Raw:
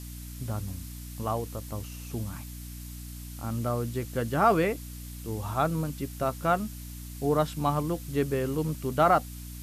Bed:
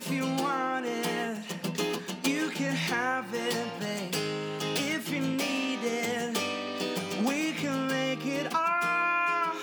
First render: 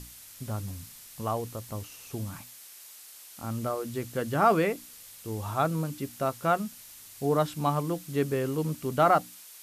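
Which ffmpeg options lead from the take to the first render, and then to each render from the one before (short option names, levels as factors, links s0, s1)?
-af "bandreject=f=60:t=h:w=6,bandreject=f=120:t=h:w=6,bandreject=f=180:t=h:w=6,bandreject=f=240:t=h:w=6,bandreject=f=300:t=h:w=6"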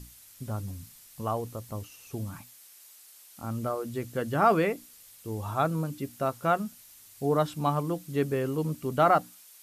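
-af "afftdn=nr=6:nf=-49"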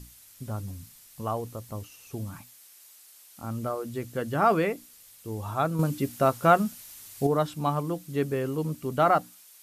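-filter_complex "[0:a]asettb=1/sr,asplit=3[s0][s1][s2];[s0]atrim=end=5.794[s3];[s1]atrim=start=5.79:end=7.27,asetpts=PTS-STARTPTS,afade=t=in:d=0.004:c=qsin,afade=t=out:st=1.476:d=0.004:c=qsin,acontrast=67[s4];[s2]atrim=start=7.266[s5];[s3][s4]acrossfade=d=0.004:c1=hsin:c2=qsin[s6];[s6][s5]acrossfade=d=0.004:c1=qsin:c2=hsin"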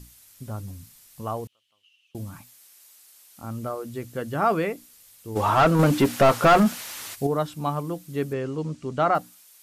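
-filter_complex "[0:a]asettb=1/sr,asplit=3[s0][s1][s2];[s0]atrim=end=1.474[s3];[s1]atrim=start=1.47:end=2.15,asetpts=PTS-STARTPTS,afade=t=in:d=0.004:c=qsin,afade=t=out:st=0.676:d=0.004:c=qsin,bandpass=f=3000:t=q:w=10[s4];[s2]atrim=start=2.146[s5];[s3][s4]acrossfade=d=0.004:c1=hsin:c2=qsin[s6];[s6][s5]acrossfade=d=0.004:c1=qsin:c2=hsin,asplit=3[s7][s8][s9];[s7]afade=t=out:st=5.35:d=0.02[s10];[s8]asplit=2[s11][s12];[s12]highpass=f=720:p=1,volume=28.2,asoftclip=type=tanh:threshold=0.422[s13];[s11][s13]amix=inputs=2:normalize=0,lowpass=f=1600:p=1,volume=0.501,afade=t=in:st=5.35:d=0.02,afade=t=out:st=7.14:d=0.02[s14];[s9]afade=t=in:st=7.14:d=0.02[s15];[s10][s14][s15]amix=inputs=3:normalize=0,asettb=1/sr,asplit=3[s16][s17][s18];[s16]atrim=end=8.334[s19];[s17]atrim=start=8.33:end=9.15,asetpts=PTS-STARTPTS,afade=t=in:d=0.004:c=qsin,afade=t=out:st=0.816:d=0.004:c=qsin,lowpass=f=7500:w=0.5412,lowpass=f=7500:w=1.3066[s20];[s18]atrim=start=9.146[s21];[s19][s20]acrossfade=d=0.004:c1=hsin:c2=qsin[s22];[s22][s21]acrossfade=d=0.004:c1=qsin:c2=hsin"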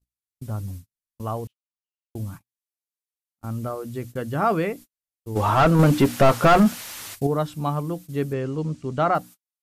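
-af "agate=range=0.00631:threshold=0.01:ratio=16:detection=peak,lowshelf=f=170:g=7"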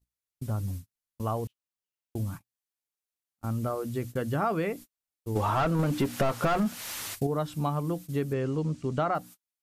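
-af "acompressor=threshold=0.0562:ratio=4"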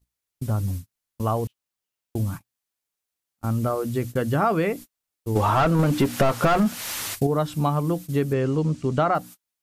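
-af "volume=2.11"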